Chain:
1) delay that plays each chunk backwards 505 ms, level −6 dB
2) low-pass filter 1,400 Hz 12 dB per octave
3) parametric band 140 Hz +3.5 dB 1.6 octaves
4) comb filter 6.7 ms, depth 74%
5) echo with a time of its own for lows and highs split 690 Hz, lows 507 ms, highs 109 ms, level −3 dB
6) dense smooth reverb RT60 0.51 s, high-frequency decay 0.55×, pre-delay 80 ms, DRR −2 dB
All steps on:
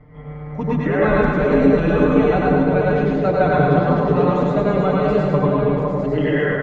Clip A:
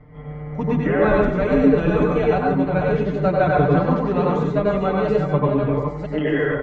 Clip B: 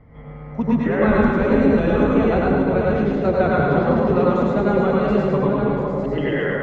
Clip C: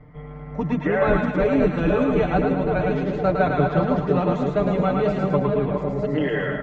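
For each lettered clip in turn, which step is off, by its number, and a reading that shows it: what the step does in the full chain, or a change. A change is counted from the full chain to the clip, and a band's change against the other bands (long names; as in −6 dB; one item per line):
5, echo-to-direct ratio 5.5 dB to 2.0 dB
4, 250 Hz band +2.0 dB
6, echo-to-direct ratio 5.5 dB to −1.5 dB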